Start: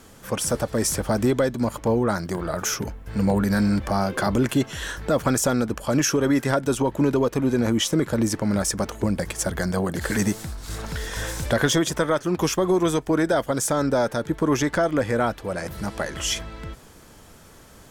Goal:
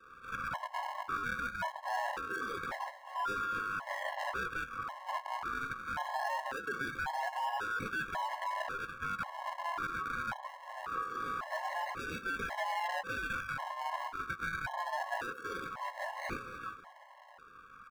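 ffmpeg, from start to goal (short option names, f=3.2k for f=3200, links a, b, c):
-filter_complex "[0:a]asplit=2[a][b];[b]acompressor=threshold=-31dB:ratio=6,volume=2dB[c];[a][c]amix=inputs=2:normalize=0,flanger=delay=8.5:depth=9.4:regen=-32:speed=0.12:shape=triangular,asplit=2[d][e];[e]aecho=0:1:230|460|690:0.141|0.0551|0.0215[f];[d][f]amix=inputs=2:normalize=0,adynamicequalizer=threshold=0.0178:dfrequency=440:dqfactor=1.8:tfrequency=440:tqfactor=1.8:attack=5:release=100:ratio=0.375:range=2:mode=boostabove:tftype=bell,alimiter=limit=-18.5dB:level=0:latency=1:release=12,acrusher=samples=42:mix=1:aa=0.000001:lfo=1:lforange=42:lforate=0.23,aeval=exprs='val(0)*sin(2*PI*1200*n/s)':c=same,highshelf=f=4.6k:g=-11.5,afftfilt=real='re*gt(sin(2*PI*0.92*pts/sr)*(1-2*mod(floor(b*sr/1024/550),2)),0)':imag='im*gt(sin(2*PI*0.92*pts/sr)*(1-2*mod(floor(b*sr/1024/550),2)),0)':win_size=1024:overlap=0.75,volume=-4dB"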